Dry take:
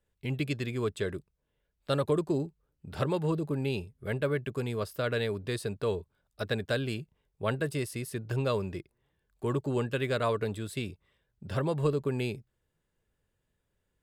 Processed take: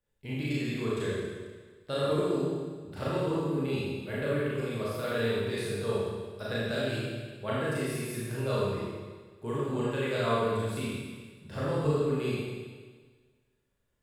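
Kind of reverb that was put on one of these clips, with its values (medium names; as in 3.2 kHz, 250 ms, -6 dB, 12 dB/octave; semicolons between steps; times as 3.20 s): Schroeder reverb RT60 1.5 s, combs from 27 ms, DRR -8 dB; trim -7.5 dB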